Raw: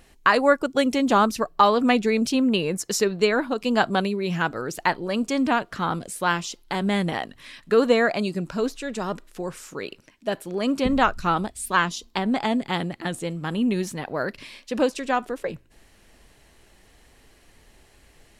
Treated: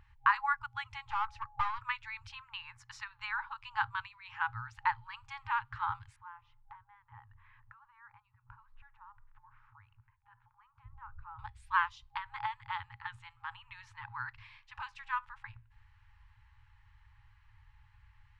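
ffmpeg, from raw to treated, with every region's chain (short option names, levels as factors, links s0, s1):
-filter_complex "[0:a]asettb=1/sr,asplit=3[s0][s1][s2];[s0]atrim=end=1.084[s3];[s1]atrim=start=1.08:end=1.79,asetpts=PTS-STARTPTS,afade=t=in:d=0.004:c=qsin,afade=t=out:st=0.706:d=0.004:c=qsin,lowpass=10000,aeval=exprs='(tanh(7.94*val(0)+0.55)-tanh(0.55))/7.94':c=same,aeval=exprs='val(0)+0.00282*sin(2*PI*840*n/s)':c=same[s4];[s2]atrim=start=1.786[s5];[s3][s4]acrossfade=d=0.004:c1=hsin:c2=qsin[s6];[s6][s5]acrossfade=d=0.004:c1=qsin:c2=hsin,asettb=1/sr,asplit=3[s7][s8][s9];[s7]atrim=end=6.164[s10];[s8]atrim=start=6.16:end=11.39,asetpts=PTS-STARTPTS,afade=t=in:d=0.004:c=qsin,afade=t=out:st=5.226:d=0.004:c=qsin,lowpass=1200,acompressor=threshold=0.0126:ratio=4:attack=3.2:release=140:knee=1:detection=peak[s11];[s9]atrim=start=11.386[s12];[s10][s11]acrossfade=d=0.004:c1=hsin:c2=qsin[s13];[s13][s12]acrossfade=d=0.004:c1=qsin:c2=hsin,lowpass=1900,afftfilt=real='re*(1-between(b*sr/4096,120,810))':imag='im*(1-between(b*sr/4096,120,810))':win_size=4096:overlap=0.75,equalizer=f=130:w=0.71:g=10,volume=0.447"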